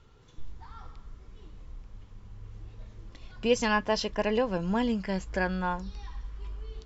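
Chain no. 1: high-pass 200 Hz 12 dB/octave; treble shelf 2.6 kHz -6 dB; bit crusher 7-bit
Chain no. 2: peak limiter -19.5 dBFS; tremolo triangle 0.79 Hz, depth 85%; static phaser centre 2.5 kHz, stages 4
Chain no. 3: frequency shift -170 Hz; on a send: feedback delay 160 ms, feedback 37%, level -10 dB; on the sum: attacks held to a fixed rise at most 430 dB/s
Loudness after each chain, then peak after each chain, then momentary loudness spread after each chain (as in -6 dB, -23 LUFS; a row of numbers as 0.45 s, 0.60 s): -30.5 LUFS, -40.0 LUFS, -31.0 LUFS; -13.5 dBFS, -21.5 dBFS, -12.5 dBFS; 7 LU, 20 LU, 18 LU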